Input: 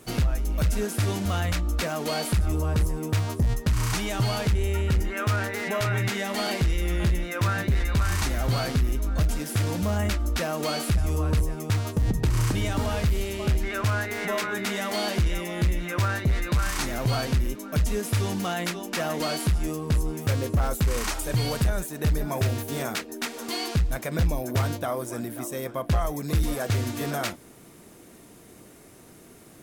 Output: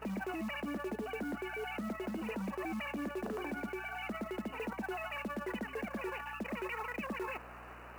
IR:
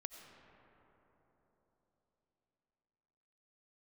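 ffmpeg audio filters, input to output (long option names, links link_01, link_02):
-af "areverse,acompressor=threshold=-35dB:ratio=20,areverse,equalizer=frequency=2100:width=1.1:gain=-3.5,asetrate=163611,aresample=44100,afftfilt=real='re*between(b*sr/4096,180,3000)':imag='im*between(b*sr/4096,180,3000)':win_size=4096:overlap=0.75,aeval=exprs='val(0)+0.00178*(sin(2*PI*60*n/s)+sin(2*PI*2*60*n/s)/2+sin(2*PI*3*60*n/s)/3+sin(2*PI*4*60*n/s)/4+sin(2*PI*5*60*n/s)/5)':channel_layout=same,acrusher=bits=5:mode=log:mix=0:aa=0.000001"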